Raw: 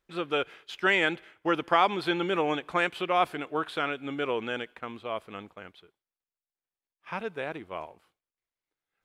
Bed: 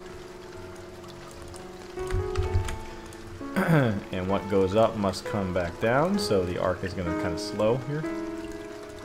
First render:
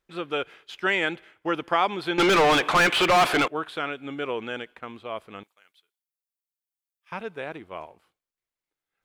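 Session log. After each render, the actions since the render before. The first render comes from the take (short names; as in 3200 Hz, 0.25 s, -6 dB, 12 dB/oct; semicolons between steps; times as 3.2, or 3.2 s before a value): 2.18–3.48 overdrive pedal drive 31 dB, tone 4100 Hz, clips at -11.5 dBFS; 5.43–7.12 differentiator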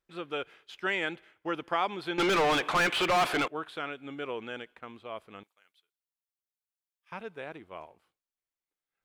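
gain -6.5 dB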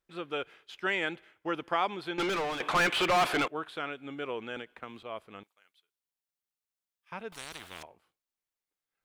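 1.86–2.6 fade out, to -11 dB; 4.56–5.03 three-band squash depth 100%; 7.32–7.83 spectral compressor 10:1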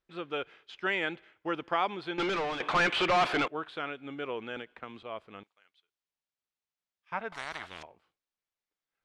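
7.13–7.66 spectral gain 580–2300 Hz +8 dB; LPF 5300 Hz 12 dB/oct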